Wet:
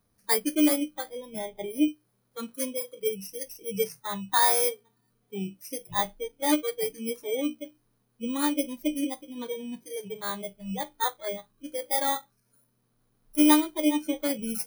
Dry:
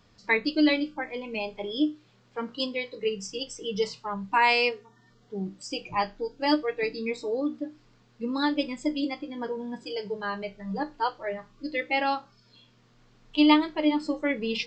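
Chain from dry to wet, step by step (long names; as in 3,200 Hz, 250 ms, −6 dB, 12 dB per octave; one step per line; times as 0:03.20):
samples in bit-reversed order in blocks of 16 samples
noise reduction from a noise print of the clip's start 11 dB
0:01.09–0:01.88: bass and treble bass +5 dB, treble −6 dB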